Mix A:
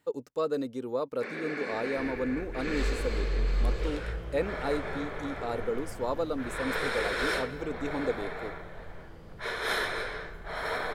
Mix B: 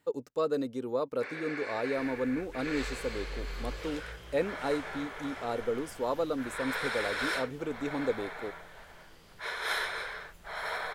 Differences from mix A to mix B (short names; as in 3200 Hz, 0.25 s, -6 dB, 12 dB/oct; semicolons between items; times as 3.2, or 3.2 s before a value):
first sound: add HPF 630 Hz 12 dB/oct; second sound: add tilt shelf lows -9.5 dB, about 1400 Hz; reverb: off